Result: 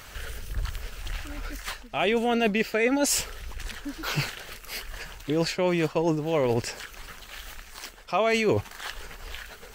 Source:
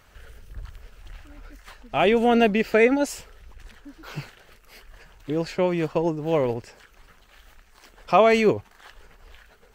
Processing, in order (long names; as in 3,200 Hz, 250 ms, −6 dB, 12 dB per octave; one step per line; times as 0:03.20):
high-shelf EQ 2,000 Hz +8 dB
reversed playback
downward compressor 6 to 1, threshold −30 dBFS, peak gain reduction 18 dB
reversed playback
level +8 dB